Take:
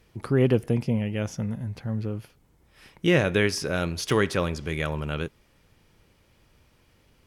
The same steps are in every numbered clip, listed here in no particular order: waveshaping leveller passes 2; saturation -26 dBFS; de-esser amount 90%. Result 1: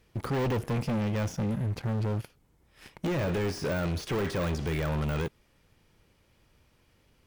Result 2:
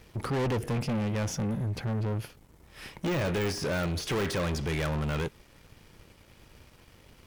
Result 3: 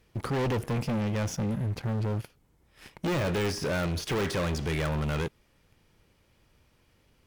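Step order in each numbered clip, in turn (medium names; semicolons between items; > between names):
waveshaping leveller > saturation > de-esser; saturation > de-esser > waveshaping leveller; de-esser > waveshaping leveller > saturation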